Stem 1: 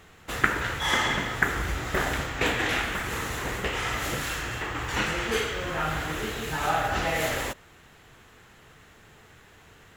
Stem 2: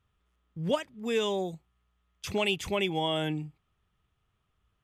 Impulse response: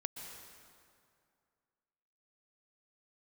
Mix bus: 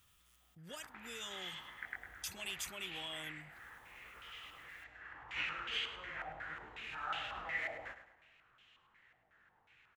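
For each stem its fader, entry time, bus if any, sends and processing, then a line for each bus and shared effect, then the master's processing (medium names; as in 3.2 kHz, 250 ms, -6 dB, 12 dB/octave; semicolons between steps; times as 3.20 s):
-4.5 dB, 0.40 s, send -17.5 dB, echo send -10.5 dB, chorus 1.6 Hz, delay 16.5 ms, depth 7.5 ms; step-sequenced low-pass 5.5 Hz 730–3000 Hz; auto duck -17 dB, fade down 0.90 s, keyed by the second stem
-7.0 dB, 0.00 s, no send, no echo send, level flattener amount 50%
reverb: on, RT60 2.3 s, pre-delay 113 ms
echo: feedback delay 104 ms, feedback 38%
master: pre-emphasis filter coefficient 0.9; band-stop 420 Hz, Q 12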